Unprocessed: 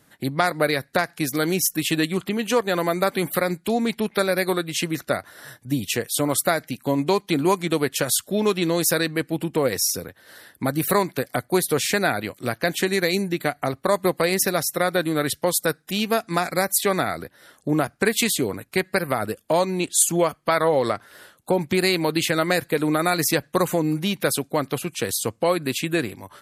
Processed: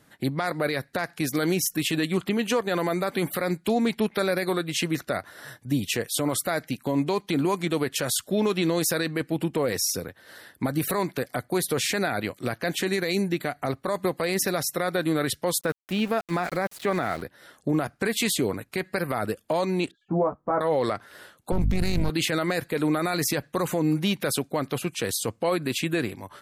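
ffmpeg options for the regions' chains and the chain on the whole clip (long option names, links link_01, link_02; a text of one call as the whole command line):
ffmpeg -i in.wav -filter_complex "[0:a]asettb=1/sr,asplit=3[link_01][link_02][link_03];[link_01]atrim=end=15.614[link_04];[link_02]atrim=start=15.61:end=17.22,asetpts=PTS-STARTPTS,afade=type=in:duration=0.004:curve=qsin,afade=type=out:start_time=1.606:duration=0.004:curve=qsin,acrossover=split=2800[link_05][link_06];[link_06]acompressor=threshold=-39dB:ratio=4:attack=1:release=60[link_07];[link_05][link_07]amix=inputs=2:normalize=0,aeval=exprs='val(0)*gte(abs(val(0)),0.015)':channel_layout=same[link_08];[link_03]atrim=start=17.216[link_09];[link_04][link_08]acrossfade=duration=0.004:curve1=hsin:curve2=qsin[link_10];[link_10][link_09]acrossfade=duration=0.004:curve1=qsin:curve2=hsin,asettb=1/sr,asplit=3[link_11][link_12][link_13];[link_11]atrim=end=19.914[link_14];[link_12]atrim=start=19.91:end=20.61,asetpts=PTS-STARTPTS,afade=type=in:duration=0.004:curve=qsin,afade=type=out:start_time=0.696:duration=0.004:curve=qsin,lowpass=frequency=1100:width=0.5412,lowpass=frequency=1100:width=1.3066,asplit=2[link_15][link_16];[link_16]adelay=16,volume=-4.5dB[link_17];[link_15][link_17]amix=inputs=2:normalize=0,atrim=end_sample=30870[link_18];[link_13]atrim=start=20.606[link_19];[link_14][link_18]acrossfade=duration=0.004:curve1=hsin:curve2=qsin[link_20];[link_20][link_19]acrossfade=duration=0.004:curve1=qsin:curve2=hsin,asettb=1/sr,asplit=3[link_21][link_22][link_23];[link_21]atrim=end=21.524[link_24];[link_22]atrim=start=21.52:end=22.1,asetpts=PTS-STARTPTS,afade=type=in:duration=0.004:curve=qsin,afade=type=out:start_time=0.576:duration=0.004:curve=qsin,aeval=exprs='max(val(0),0)':channel_layout=same,aeval=exprs='val(0)+0.0282*(sin(2*PI*50*n/s)+sin(2*PI*2*50*n/s)/2+sin(2*PI*3*50*n/s)/3+sin(2*PI*4*50*n/s)/4+sin(2*PI*5*50*n/s)/5)':channel_layout=same,bass=frequency=250:gain=12,treble=frequency=4000:gain=2[link_25];[link_23]atrim=start=22.096[link_26];[link_24][link_25]acrossfade=duration=0.004:curve1=hsin:curve2=qsin[link_27];[link_27][link_26]acrossfade=duration=0.004:curve1=qsin:curve2=hsin,highshelf=frequency=7000:gain=-5.5,alimiter=limit=-15dB:level=0:latency=1:release=19" out.wav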